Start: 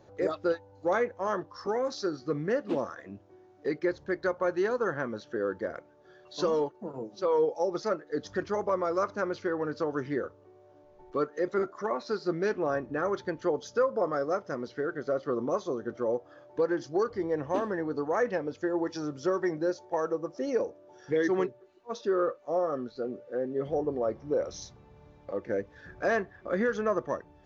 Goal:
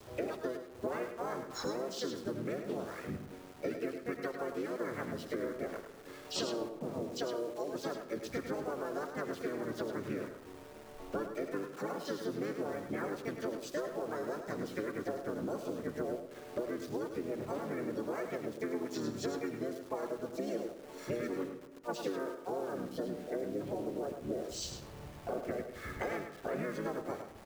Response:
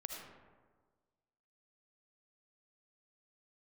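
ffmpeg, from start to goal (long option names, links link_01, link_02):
-filter_complex "[0:a]asplit=3[link_01][link_02][link_03];[link_02]asetrate=33038,aresample=44100,atempo=1.33484,volume=-1dB[link_04];[link_03]asetrate=55563,aresample=44100,atempo=0.793701,volume=-3dB[link_05];[link_01][link_04][link_05]amix=inputs=3:normalize=0,acompressor=threshold=-36dB:ratio=16,adynamicequalizer=threshold=0.00126:dfrequency=930:dqfactor=1.4:tfrequency=930:tqfactor=1.4:attack=5:release=100:ratio=0.375:range=2:mode=cutabove:tftype=bell,aeval=exprs='val(0)*gte(abs(val(0)),0.00211)':channel_layout=same,aecho=1:1:104:0.398,asplit=2[link_06][link_07];[1:a]atrim=start_sample=2205,highshelf=frequency=4800:gain=9[link_08];[link_07][link_08]afir=irnorm=-1:irlink=0,volume=-5.5dB[link_09];[link_06][link_09]amix=inputs=2:normalize=0"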